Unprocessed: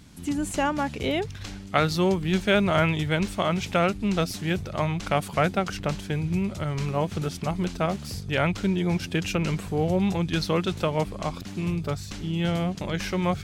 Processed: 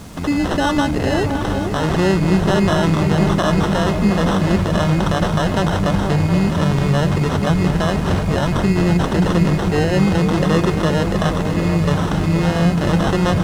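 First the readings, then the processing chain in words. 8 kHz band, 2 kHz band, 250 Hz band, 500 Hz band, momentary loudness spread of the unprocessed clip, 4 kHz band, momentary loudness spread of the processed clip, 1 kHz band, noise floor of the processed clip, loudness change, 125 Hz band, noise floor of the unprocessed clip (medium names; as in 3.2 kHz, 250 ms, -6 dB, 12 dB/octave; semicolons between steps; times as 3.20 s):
+6.5 dB, +6.5 dB, +10.5 dB, +7.5 dB, 7 LU, +6.0 dB, 3 LU, +7.5 dB, -21 dBFS, +9.0 dB, +11.0 dB, -39 dBFS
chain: treble shelf 5 kHz +7 dB; in parallel at -3 dB: compressor with a negative ratio -32 dBFS; on the sum: peak limiter -14.5 dBFS, peak gain reduction 10 dB; sample-and-hold 19×; added noise violet -38 dBFS; distance through air 77 m; on a send: delay with an opening low-pass 239 ms, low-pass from 200 Hz, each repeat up 2 oct, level -3 dB; on the sum: trim +6.5 dB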